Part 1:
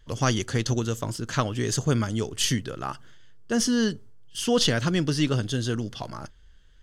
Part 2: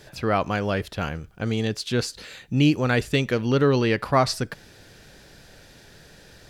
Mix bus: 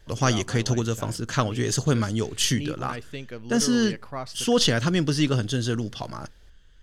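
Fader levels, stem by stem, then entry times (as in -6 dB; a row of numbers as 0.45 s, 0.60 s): +1.5 dB, -14.5 dB; 0.00 s, 0.00 s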